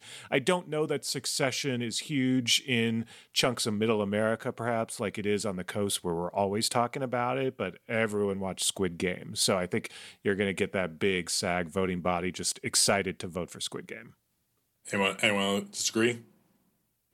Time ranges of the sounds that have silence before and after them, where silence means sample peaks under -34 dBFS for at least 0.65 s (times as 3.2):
14.88–16.16